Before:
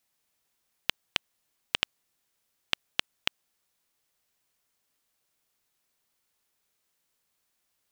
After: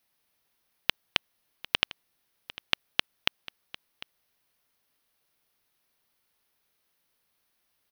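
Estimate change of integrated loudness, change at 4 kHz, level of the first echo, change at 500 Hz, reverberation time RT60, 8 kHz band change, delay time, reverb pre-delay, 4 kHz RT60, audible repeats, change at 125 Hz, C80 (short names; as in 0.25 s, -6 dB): +2.5 dB, +2.5 dB, -18.0 dB, +3.0 dB, none, -2.5 dB, 0.75 s, none, none, 1, +3.0 dB, none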